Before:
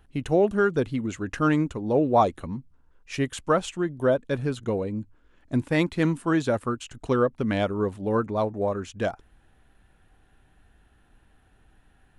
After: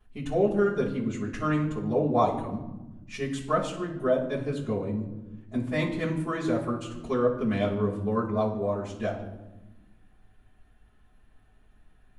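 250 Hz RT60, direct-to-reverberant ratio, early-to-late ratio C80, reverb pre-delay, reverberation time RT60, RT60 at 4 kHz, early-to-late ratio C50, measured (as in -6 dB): 1.9 s, -11.0 dB, 10.5 dB, 5 ms, 1.1 s, 0.65 s, 7.5 dB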